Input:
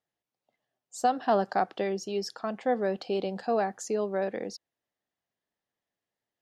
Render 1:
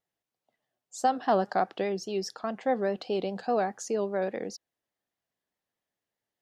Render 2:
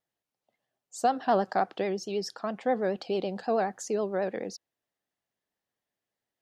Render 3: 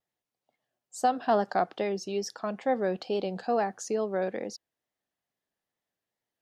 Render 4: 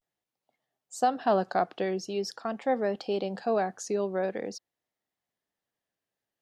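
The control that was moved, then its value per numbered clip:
vibrato, rate: 4.9 Hz, 9.3 Hz, 2.3 Hz, 0.45 Hz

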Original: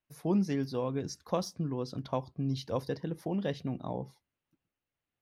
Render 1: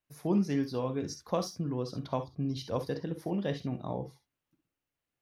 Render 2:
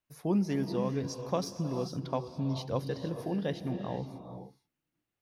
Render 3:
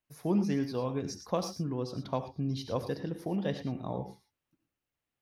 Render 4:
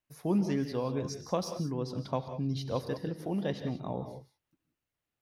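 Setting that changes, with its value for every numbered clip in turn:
gated-style reverb, gate: 80 ms, 500 ms, 130 ms, 210 ms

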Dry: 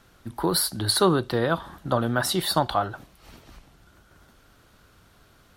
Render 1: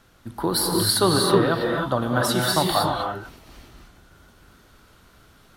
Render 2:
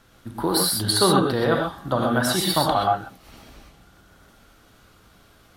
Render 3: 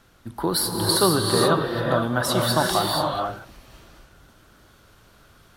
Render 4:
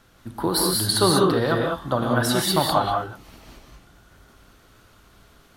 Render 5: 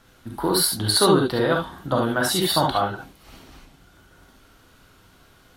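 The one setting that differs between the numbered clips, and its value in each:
gated-style reverb, gate: 340 ms, 150 ms, 510 ms, 220 ms, 90 ms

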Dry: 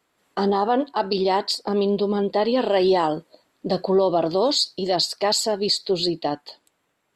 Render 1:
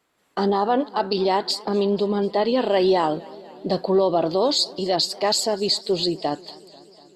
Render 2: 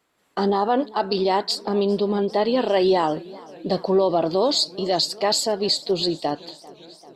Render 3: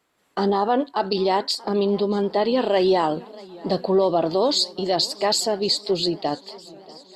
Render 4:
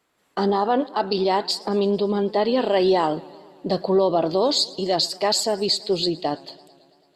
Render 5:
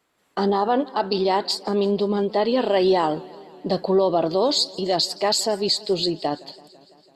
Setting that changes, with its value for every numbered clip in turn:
modulated delay, time: 245 ms, 396 ms, 632 ms, 111 ms, 167 ms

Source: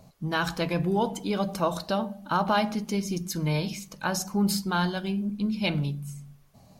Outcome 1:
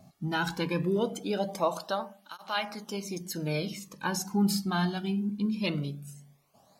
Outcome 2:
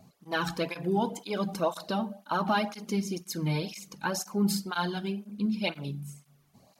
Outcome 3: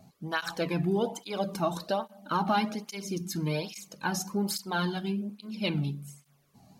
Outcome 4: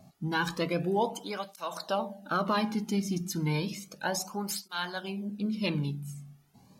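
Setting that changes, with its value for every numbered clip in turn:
cancelling through-zero flanger, nulls at: 0.21 Hz, 2 Hz, 1.2 Hz, 0.32 Hz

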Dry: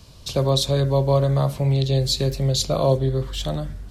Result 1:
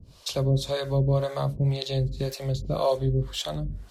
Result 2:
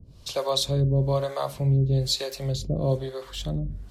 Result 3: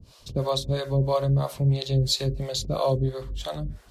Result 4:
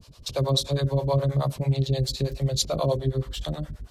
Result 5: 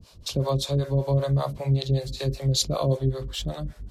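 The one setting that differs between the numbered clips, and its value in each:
harmonic tremolo, rate: 1.9 Hz, 1.1 Hz, 3 Hz, 9.4 Hz, 5.2 Hz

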